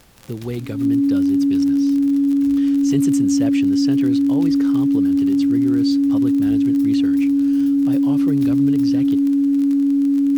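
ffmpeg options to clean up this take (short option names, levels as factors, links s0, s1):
-af "adeclick=t=4,bandreject=f=280:w=30,agate=range=0.0891:threshold=0.355"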